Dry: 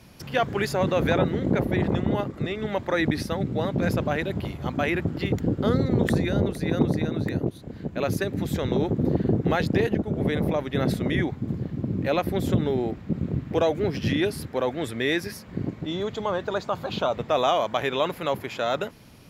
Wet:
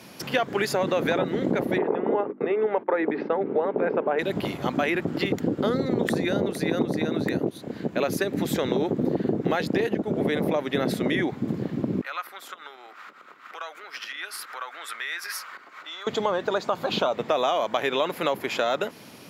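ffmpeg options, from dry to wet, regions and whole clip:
ffmpeg -i in.wav -filter_complex "[0:a]asettb=1/sr,asplit=3[link_01][link_02][link_03];[link_01]atrim=end=1.784[link_04];[link_02]atrim=start=1.78:end=4.19,asetpts=PTS-STARTPTS,afade=type=in:duration=0.004:curve=qsin,afade=type=out:start_time=2.406:duration=0.004:curve=qsin,agate=range=-23dB:threshold=-35dB:ratio=16:release=100:detection=peak,highpass=270,equalizer=frequency=430:width_type=q:width=4:gain=9,equalizer=frequency=880:width_type=q:width=4:gain=5,equalizer=frequency=1900:width_type=q:width=4:gain=-4,lowpass=frequency=2200:width=0.5412,lowpass=frequency=2200:width=1.3066,bandreject=frequency=50:width_type=h:width=6,bandreject=frequency=100:width_type=h:width=6,bandreject=frequency=150:width_type=h:width=6,bandreject=frequency=200:width_type=h:width=6,bandreject=frequency=250:width_type=h:width=6,bandreject=frequency=300:width_type=h:width=6,bandreject=frequency=350:width_type=h:width=6[link_05];[link_03]atrim=start=4.186[link_06];[link_04][link_05]acrossfade=duration=0.004:curve1=hsin:curve2=qsin[link_07];[link_07][link_06]acrossfade=duration=0.004:curve1=qsin:curve2=hsin,asettb=1/sr,asplit=3[link_08][link_09][link_10];[link_08]atrim=end=12.014[link_11];[link_09]atrim=start=12.01:end=16.07,asetpts=PTS-STARTPTS,afade=type=in:duration=0.004:curve=qsin,afade=type=out:start_time=4.056:duration=0.004:curve=qsin,bandreject=frequency=1700:width=21,acompressor=threshold=-34dB:ratio=10:attack=3.2:release=140:knee=1:detection=peak,highpass=frequency=1300:width_type=q:width=3.9[link_12];[link_10]atrim=start=16.066[link_13];[link_11][link_12]acrossfade=duration=0.004:curve1=hsin:curve2=qsin[link_14];[link_14][link_13]acrossfade=duration=0.004:curve1=qsin:curve2=hsin,highpass=230,acompressor=threshold=-29dB:ratio=4,volume=7.5dB" out.wav

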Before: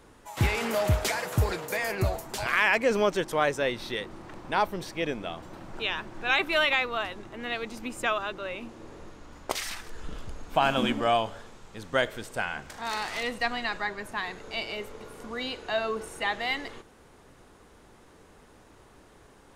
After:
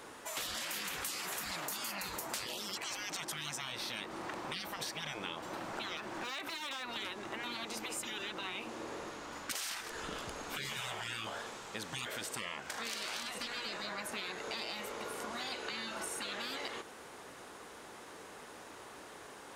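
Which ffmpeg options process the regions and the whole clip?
ffmpeg -i in.wav -filter_complex "[0:a]asettb=1/sr,asplit=3[link_01][link_02][link_03];[link_01]atrim=end=5.974[link_04];[link_02]atrim=start=5.97:end=6.96,asetpts=PTS-STARTPTS,afade=type=in:duration=0.004:curve=qsin,afade=type=out:start_time=0.986:duration=0.004:curve=qsin,acompressor=threshold=-33dB:ratio=8:attack=3.2:release=140:knee=1:detection=peak,asoftclip=type=hard:threshold=-31.5dB[link_05];[link_03]atrim=start=6.956[link_06];[link_04][link_05]acrossfade=duration=0.004:curve1=hsin:curve2=qsin[link_07];[link_07][link_06]acrossfade=duration=0.004:curve1=qsin:curve2=hsin,highpass=frequency=570:poles=1,afftfilt=real='re*lt(hypot(re,im),0.0355)':imag='im*lt(hypot(re,im),0.0355)':win_size=1024:overlap=0.75,acompressor=threshold=-45dB:ratio=6,volume=8dB" out.wav

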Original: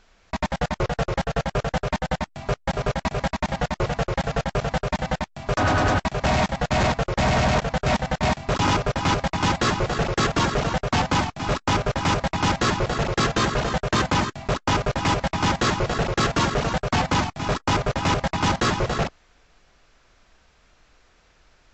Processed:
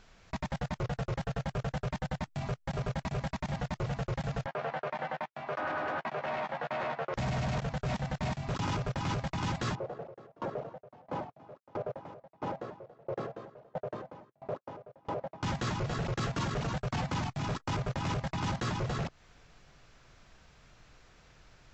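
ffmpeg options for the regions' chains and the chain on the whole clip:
ffmpeg -i in.wav -filter_complex "[0:a]asettb=1/sr,asplit=3[link_01][link_02][link_03];[link_01]atrim=end=4.464[link_04];[link_02]atrim=start=4.46:end=7.14,asetpts=PTS-STARTPTS,afade=type=in:duration=0.004:curve=qsin,afade=type=out:start_time=2.676:duration=0.004:curve=qsin,highpass=480,lowpass=2100,asplit=2[link_05][link_06];[link_06]adelay=13,volume=-6dB[link_07];[link_05][link_07]amix=inputs=2:normalize=0,atrim=end_sample=118188[link_08];[link_03]atrim=start=7.136[link_09];[link_04][link_08]acrossfade=duration=0.004:curve1=hsin:curve2=qsin[link_10];[link_10][link_09]acrossfade=duration=0.004:curve1=qsin:curve2=hsin,asettb=1/sr,asplit=3[link_11][link_12][link_13];[link_11]atrim=end=9.754[link_14];[link_12]atrim=start=9.75:end=15.43,asetpts=PTS-STARTPTS,afade=type=in:duration=0.004:curve=qsin,afade=type=out:start_time=5.676:duration=0.004:curve=qsin,bandpass=frequency=550:width_type=q:width=2.3,aeval=exprs='val(0)*pow(10,-30*if(lt(mod(1.5*n/s,1),2*abs(1.5)/1000),1-mod(1.5*n/s,1)/(2*abs(1.5)/1000),(mod(1.5*n/s,1)-2*abs(1.5)/1000)/(1-2*abs(1.5)/1000))/20)':channel_layout=same[link_15];[link_13]atrim=start=15.426[link_16];[link_14][link_15]acrossfade=duration=0.004:curve1=hsin:curve2=qsin[link_17];[link_17][link_16]acrossfade=duration=0.004:curve1=qsin:curve2=hsin,equalizer=frequency=130:width=1.5:gain=10,acompressor=threshold=-25dB:ratio=4,alimiter=level_in=1dB:limit=-24dB:level=0:latency=1:release=16,volume=-1dB,volume=-1.5dB" out.wav

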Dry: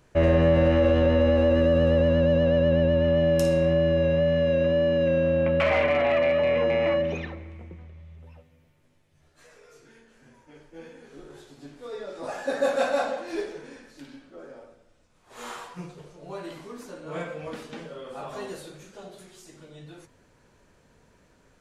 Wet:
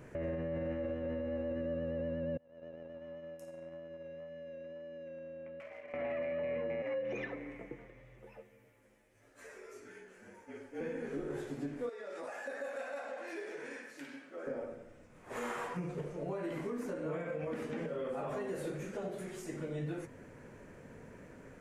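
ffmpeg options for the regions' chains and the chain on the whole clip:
ffmpeg -i in.wav -filter_complex "[0:a]asettb=1/sr,asplit=3[link_01][link_02][link_03];[link_01]atrim=end=2.374[link_04];[link_02]atrim=start=2.37:end=5.94,asetpts=PTS-STARTPTS,afade=type=in:duration=0.004:curve=qsin,afade=type=out:start_time=3.566:duration=0.004:curve=qsin,agate=range=-32dB:threshold=-18dB:ratio=16:release=100:detection=peak,bass=frequency=250:gain=-9,treble=frequency=4000:gain=13,acompressor=threshold=-52dB:ratio=16:attack=3.2:release=140:knee=1:detection=peak[link_05];[link_03]atrim=start=5.936[link_06];[link_04][link_05]acrossfade=duration=0.004:curve1=hsin:curve2=qsin[link_07];[link_07][link_06]acrossfade=duration=0.004:curve1=qsin:curve2=hsin,asettb=1/sr,asplit=3[link_08][link_09][link_10];[link_08]atrim=end=6.824[link_11];[link_09]atrim=start=6.82:end=10.81,asetpts=PTS-STARTPTS,afade=type=in:duration=0.004:curve=qsin,afade=type=out:start_time=3.986:duration=0.004:curve=qsin,bass=frequency=250:gain=-14,treble=frequency=4000:gain=5,flanger=delay=6.1:depth=1.8:regen=62:speed=1.6:shape=triangular,afreqshift=-39[link_12];[link_10]atrim=start=10.806[link_13];[link_11][link_12]acrossfade=duration=0.004:curve1=hsin:curve2=qsin[link_14];[link_14][link_13]acrossfade=duration=0.004:curve1=qsin:curve2=hsin,asettb=1/sr,asplit=3[link_15][link_16][link_17];[link_15]atrim=end=11.894[link_18];[link_16]atrim=start=11.89:end=14.47,asetpts=PTS-STARTPTS,afade=type=in:duration=0.004:curve=qsin,afade=type=out:start_time=2.576:duration=0.004:curve=qsin,highpass=frequency=1400:poles=1,acompressor=threshold=-47dB:ratio=6:attack=3.2:release=140:knee=1:detection=peak[link_19];[link_17]atrim=start=14.466[link_20];[link_18][link_19]acrossfade=duration=0.004:curve1=hsin:curve2=qsin[link_21];[link_21][link_20]acrossfade=duration=0.004:curve1=qsin:curve2=hsin,equalizer=frequency=125:width_type=o:width=1:gain=6,equalizer=frequency=250:width_type=o:width=1:gain=7,equalizer=frequency=500:width_type=o:width=1:gain=7,equalizer=frequency=2000:width_type=o:width=1:gain=8,equalizer=frequency=4000:width_type=o:width=1:gain=-9,acompressor=threshold=-27dB:ratio=10,alimiter=level_in=7dB:limit=-24dB:level=0:latency=1:release=278,volume=-7dB,volume=1dB" out.wav

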